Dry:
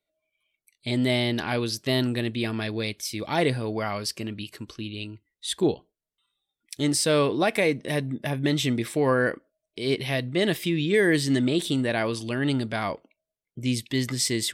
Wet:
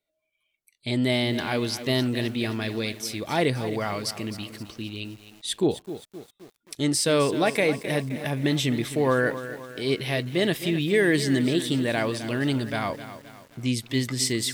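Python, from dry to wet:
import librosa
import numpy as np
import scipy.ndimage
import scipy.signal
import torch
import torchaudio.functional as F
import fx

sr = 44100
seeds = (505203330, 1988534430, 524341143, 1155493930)

y = fx.echo_crushed(x, sr, ms=261, feedback_pct=55, bits=7, wet_db=-12)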